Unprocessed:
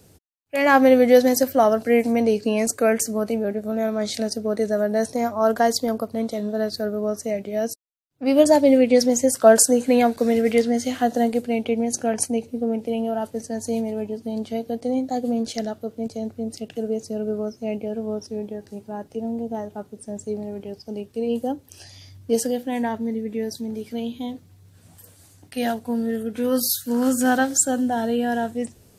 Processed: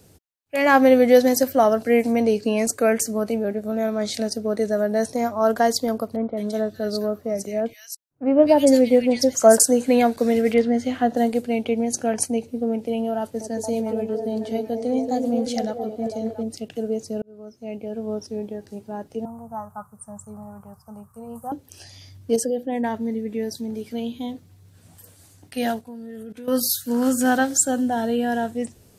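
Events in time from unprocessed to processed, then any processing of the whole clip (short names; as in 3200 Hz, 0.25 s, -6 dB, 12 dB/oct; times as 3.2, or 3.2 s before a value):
6.16–9.6 bands offset in time lows, highs 0.21 s, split 1900 Hz
10.54–11.17 tone controls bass +2 dB, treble -12 dB
13.18–16.43 delay with a stepping band-pass 0.227 s, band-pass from 370 Hz, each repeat 0.7 oct, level -1 dB
17.22–18.15 fade in
19.25–21.52 EQ curve 140 Hz 0 dB, 220 Hz -8 dB, 310 Hz -28 dB, 580 Hz -9 dB, 1200 Hz +15 dB, 1900 Hz -14 dB, 3400 Hz -28 dB, 5100 Hz -17 dB, 9000 Hz +3 dB
22.36–22.84 formant sharpening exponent 1.5
25.81–26.48 level quantiser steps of 18 dB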